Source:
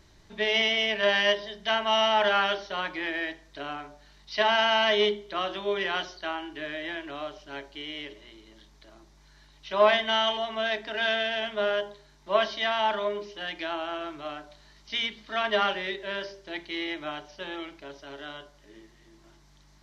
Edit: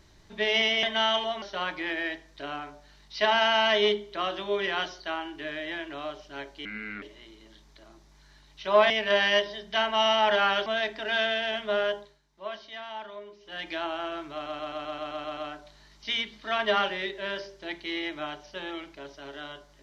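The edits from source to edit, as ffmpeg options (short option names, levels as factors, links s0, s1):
-filter_complex "[0:a]asplit=17[s0][s1][s2][s3][s4][s5][s6][s7][s8][s9][s10][s11][s12][s13][s14][s15][s16];[s0]atrim=end=0.832[s17];[s1]atrim=start=9.958:end=10.552[s18];[s2]atrim=start=2.588:end=7.824[s19];[s3]atrim=start=7.82:end=8.08,asetpts=PTS-STARTPTS,asetrate=30870,aresample=44100,atrim=end_sample=16380,asetpts=PTS-STARTPTS[s20];[s4]atrim=start=8.076:end=9.962[s21];[s5]atrim=start=0.828:end=2.592[s22];[s6]atrim=start=10.548:end=12.1,asetpts=PTS-STARTPTS,afade=t=out:st=1.292:d=0.26:silence=0.223872[s23];[s7]atrim=start=12.1:end=13.29,asetpts=PTS-STARTPTS,volume=0.224[s24];[s8]atrim=start=13.29:end=14.352,asetpts=PTS-STARTPTS,afade=t=in:d=0.26:silence=0.223872[s25];[s9]atrim=start=14.218:end=14.352[s26];[s10]atrim=start=14.218:end=14.352[s27];[s11]atrim=start=14.218:end=14.352[s28];[s12]atrim=start=14.218:end=14.352[s29];[s13]atrim=start=14.218:end=14.352[s30];[s14]atrim=start=14.218:end=14.352[s31];[s15]atrim=start=14.218:end=14.352[s32];[s16]atrim=start=14.218[s33];[s17][s18]acrossfade=d=0.004:c1=hsin:c2=hsin[s34];[s34][s19]acrossfade=d=0.004:c1=hsin:c2=hsin[s35];[s35][s20]acrossfade=d=0.004:c1=hsin:c2=hsin[s36];[s36][s21]acrossfade=d=0.004:c1=hsin:c2=hsin[s37];[s37][s22]acrossfade=d=0.004:c1=hsin:c2=hsin[s38];[s23][s24][s25]concat=n=3:v=0:a=1[s39];[s38][s39]acrossfade=d=0.004:c1=hsin:c2=hsin[s40];[s40][s26]acrossfade=d=0.004:c1=hsin:c2=hsin[s41];[s41][s27]acrossfade=d=0.004:c1=hsin:c2=hsin[s42];[s42][s28]acrossfade=d=0.004:c1=hsin:c2=hsin[s43];[s43][s29]acrossfade=d=0.004:c1=hsin:c2=hsin[s44];[s44][s30]acrossfade=d=0.004:c1=hsin:c2=hsin[s45];[s45][s31]acrossfade=d=0.004:c1=hsin:c2=hsin[s46];[s46][s32]acrossfade=d=0.004:c1=hsin:c2=hsin[s47];[s47][s33]acrossfade=d=0.004:c1=hsin:c2=hsin"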